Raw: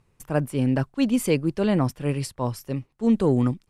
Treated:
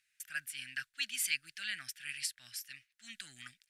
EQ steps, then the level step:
elliptic high-pass filter 1,600 Hz, stop band 40 dB
0.0 dB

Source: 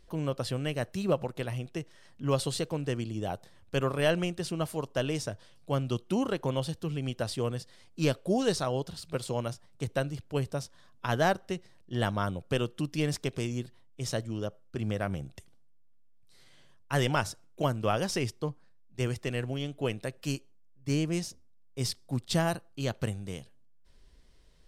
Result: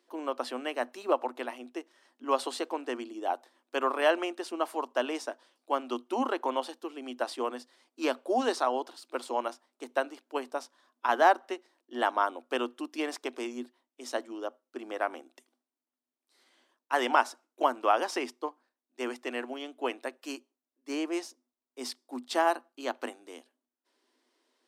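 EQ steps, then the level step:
dynamic equaliser 860 Hz, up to +8 dB, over −44 dBFS, Q 0.87
Chebyshev high-pass with heavy ripple 240 Hz, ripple 6 dB
dynamic equaliser 2,200 Hz, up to +4 dB, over −45 dBFS, Q 0.73
0.0 dB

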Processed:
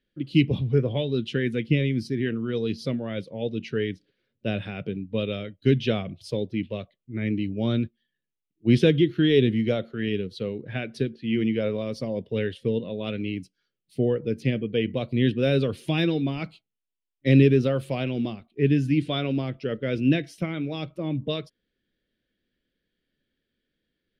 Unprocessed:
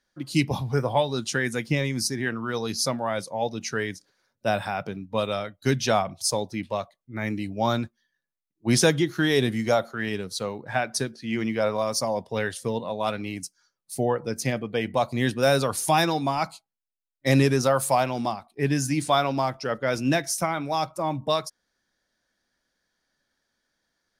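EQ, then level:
drawn EQ curve 450 Hz 0 dB, 860 Hz −24 dB, 3,000 Hz 0 dB, 6,400 Hz −28 dB
+3.5 dB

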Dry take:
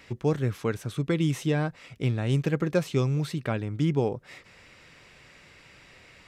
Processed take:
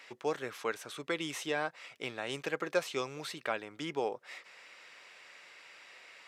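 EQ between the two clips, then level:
high-pass filter 620 Hz 12 dB per octave
high-shelf EQ 9,100 Hz −4.5 dB
0.0 dB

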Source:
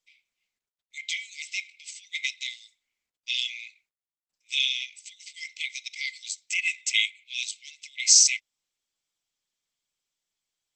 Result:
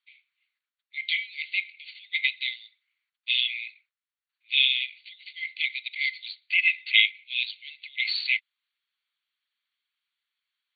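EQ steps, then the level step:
high-pass filter 1,300 Hz 24 dB per octave
linear-phase brick-wall low-pass 4,600 Hz
high-shelf EQ 3,500 Hz −10 dB
+8.5 dB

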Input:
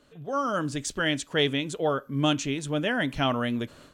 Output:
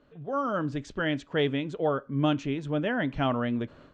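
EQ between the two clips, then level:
low-pass filter 5,700 Hz 12 dB per octave
high-frequency loss of the air 110 metres
parametric band 4,400 Hz −6.5 dB 2.3 octaves
0.0 dB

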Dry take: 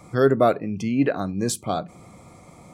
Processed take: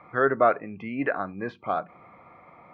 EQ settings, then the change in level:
inverse Chebyshev low-pass filter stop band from 7,700 Hz, stop band 70 dB
spectral tilt +2 dB per octave
tilt shelving filter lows −6.5 dB, about 630 Hz
−1.0 dB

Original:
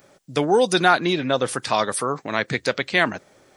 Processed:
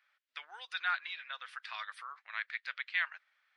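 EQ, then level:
high-pass filter 1,500 Hz 24 dB per octave
high-frequency loss of the air 390 metres
−7.0 dB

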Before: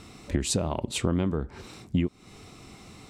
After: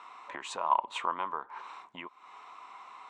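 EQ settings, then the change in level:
high-pass with resonance 1,000 Hz, resonance Q 7.6
high-frequency loss of the air 140 metres
parametric band 4,900 Hz −10 dB 0.57 octaves
−1.5 dB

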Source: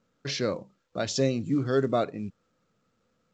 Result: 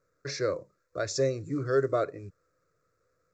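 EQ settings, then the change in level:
phaser with its sweep stopped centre 830 Hz, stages 6
+1.0 dB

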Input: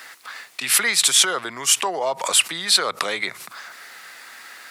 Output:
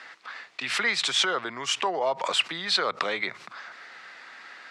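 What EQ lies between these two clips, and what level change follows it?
high-pass filter 97 Hz
high-frequency loss of the air 140 metres
high-shelf EQ 12,000 Hz −10 dB
−2.0 dB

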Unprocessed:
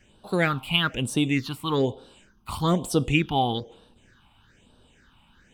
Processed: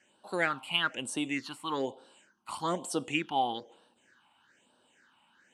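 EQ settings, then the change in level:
loudspeaker in its box 420–9,700 Hz, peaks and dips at 440 Hz −8 dB, 690 Hz −3 dB, 1,200 Hz −4 dB, 2,400 Hz −5 dB, 3,600 Hz −9 dB, 5,800 Hz −4 dB
notch filter 4,900 Hz, Q 17
−1.5 dB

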